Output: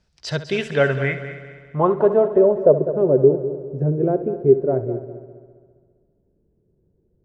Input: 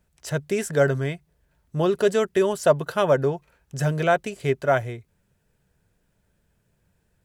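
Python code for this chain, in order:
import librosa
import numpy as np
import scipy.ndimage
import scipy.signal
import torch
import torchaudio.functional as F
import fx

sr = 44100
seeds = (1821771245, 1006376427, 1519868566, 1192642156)

y = fx.filter_sweep_lowpass(x, sr, from_hz=5100.0, to_hz=380.0, start_s=0.14, end_s=2.88, q=3.9)
y = fx.echo_heads(y, sr, ms=67, heads='first and third', feedback_pct=57, wet_db=-13.5)
y = y * 10.0 ** (1.0 / 20.0)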